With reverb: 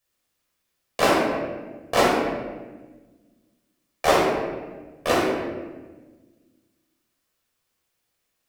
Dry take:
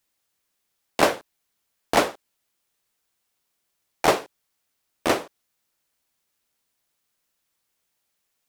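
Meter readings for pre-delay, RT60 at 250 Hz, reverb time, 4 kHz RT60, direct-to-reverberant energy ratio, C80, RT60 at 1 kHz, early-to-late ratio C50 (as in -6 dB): 14 ms, 2.0 s, 1.3 s, 0.85 s, -5.5 dB, 2.5 dB, 1.2 s, -1.0 dB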